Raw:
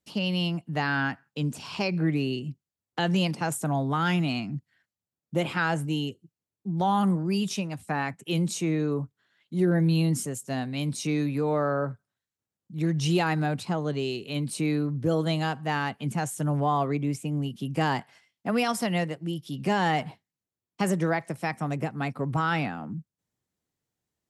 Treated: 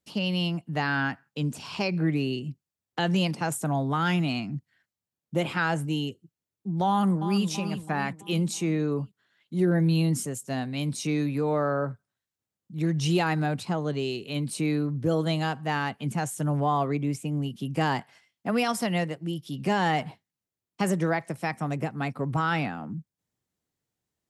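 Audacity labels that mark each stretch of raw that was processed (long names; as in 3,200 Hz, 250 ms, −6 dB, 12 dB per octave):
6.880000	7.460000	delay throw 330 ms, feedback 50%, level −10 dB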